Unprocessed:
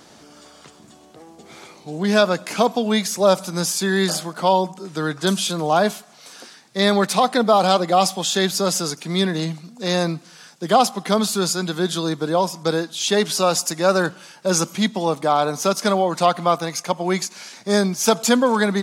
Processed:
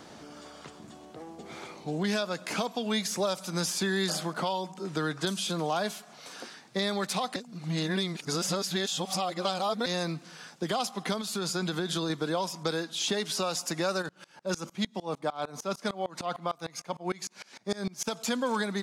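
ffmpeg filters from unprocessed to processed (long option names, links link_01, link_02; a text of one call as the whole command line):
ffmpeg -i in.wav -filter_complex "[0:a]asettb=1/sr,asplit=3[link_01][link_02][link_03];[link_01]atrim=end=11.214[link_04];[link_02]atrim=start=11.21:end=12.1,asetpts=PTS-STARTPTS,afade=type=in:duration=0.004:curve=qsin,afade=type=out:start_time=0.886:duration=0.004:curve=qsin,acompressor=threshold=-22dB:ratio=4:attack=3.2:release=140:knee=1:detection=peak[link_05];[link_03]atrim=start=12.096[link_06];[link_04][link_05]acrossfade=duration=0.004:curve1=hsin:curve2=qsin[link_07];[link_07][link_06]acrossfade=duration=0.004:curve1=qsin:curve2=hsin,asplit=3[link_08][link_09][link_10];[link_08]afade=type=out:start_time=14.01:duration=0.02[link_11];[link_09]aeval=exprs='val(0)*pow(10,-26*if(lt(mod(-6.6*n/s,1),2*abs(-6.6)/1000),1-mod(-6.6*n/s,1)/(2*abs(-6.6)/1000),(mod(-6.6*n/s,1)-2*abs(-6.6)/1000)/(1-2*abs(-6.6)/1000))/20)':channel_layout=same,afade=type=in:start_time=14.01:duration=0.02,afade=type=out:start_time=18.07:duration=0.02[link_12];[link_10]afade=type=in:start_time=18.07:duration=0.02[link_13];[link_11][link_12][link_13]amix=inputs=3:normalize=0,asplit=3[link_14][link_15][link_16];[link_14]atrim=end=7.362[link_17];[link_15]atrim=start=7.358:end=9.862,asetpts=PTS-STARTPTS,areverse[link_18];[link_16]atrim=start=9.858[link_19];[link_17][link_18]acrossfade=duration=0.004:curve1=hsin:curve2=hsin[link_20];[link_20][link_19]acrossfade=duration=0.004:curve1=hsin:curve2=hsin,highshelf=frequency=4300:gain=-8,acrossover=split=1500|3600[link_21][link_22][link_23];[link_21]acompressor=threshold=-29dB:ratio=4[link_24];[link_22]acompressor=threshold=-37dB:ratio=4[link_25];[link_23]acompressor=threshold=-31dB:ratio=4[link_26];[link_24][link_25][link_26]amix=inputs=3:normalize=0,alimiter=limit=-18.5dB:level=0:latency=1:release=397" out.wav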